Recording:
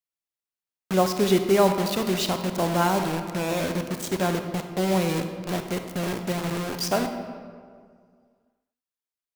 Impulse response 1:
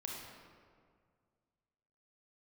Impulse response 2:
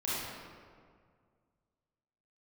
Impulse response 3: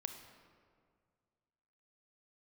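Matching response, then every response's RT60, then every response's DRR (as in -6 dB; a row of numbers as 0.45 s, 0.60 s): 3; 2.0 s, 2.0 s, 2.0 s; -2.0 dB, -9.5 dB, 6.0 dB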